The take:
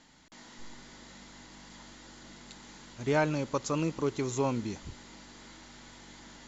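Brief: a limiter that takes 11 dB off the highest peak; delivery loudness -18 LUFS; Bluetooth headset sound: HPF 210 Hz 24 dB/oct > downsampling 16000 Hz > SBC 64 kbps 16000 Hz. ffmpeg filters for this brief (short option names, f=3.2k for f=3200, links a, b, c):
-af "alimiter=level_in=1dB:limit=-24dB:level=0:latency=1,volume=-1dB,highpass=f=210:w=0.5412,highpass=f=210:w=1.3066,aresample=16000,aresample=44100,volume=22.5dB" -ar 16000 -c:a sbc -b:a 64k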